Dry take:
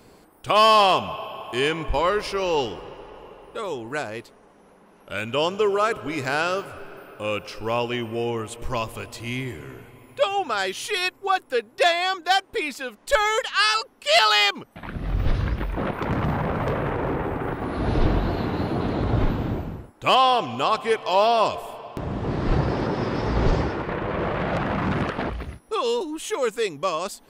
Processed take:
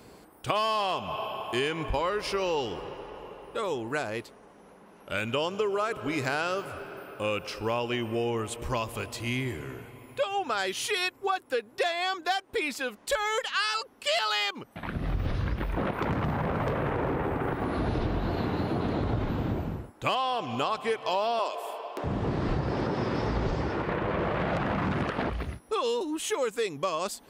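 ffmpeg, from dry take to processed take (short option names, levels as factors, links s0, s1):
-filter_complex "[0:a]asettb=1/sr,asplit=3[s0][s1][s2];[s0]atrim=end=21.394[s3];[s1]atrim=start=21.39:end=22.04,asetpts=PTS-STARTPTS,afade=t=in:d=0.004:c=qsin,afade=t=out:st=0.646:d=0.004:c=qsin,highpass=f=340:w=0.5412,highpass=f=340:w=1.3066[s4];[s2]atrim=start=22.036[s5];[s3][s4]acrossfade=d=0.004:c1=hsin:c2=qsin[s6];[s6][s5]acrossfade=d=0.004:c1=qsin:c2=hsin,highpass=40,acompressor=threshold=0.0562:ratio=6"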